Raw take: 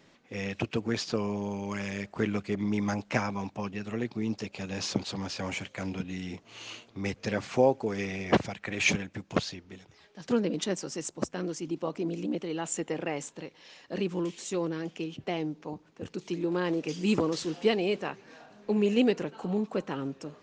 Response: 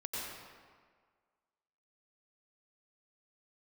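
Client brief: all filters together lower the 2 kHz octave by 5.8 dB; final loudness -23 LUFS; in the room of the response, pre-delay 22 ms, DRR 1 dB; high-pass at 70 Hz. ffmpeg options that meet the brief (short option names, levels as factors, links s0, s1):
-filter_complex "[0:a]highpass=70,equalizer=f=2000:t=o:g=-7.5,asplit=2[s0][s1];[1:a]atrim=start_sample=2205,adelay=22[s2];[s1][s2]afir=irnorm=-1:irlink=0,volume=0.668[s3];[s0][s3]amix=inputs=2:normalize=0,volume=2.24"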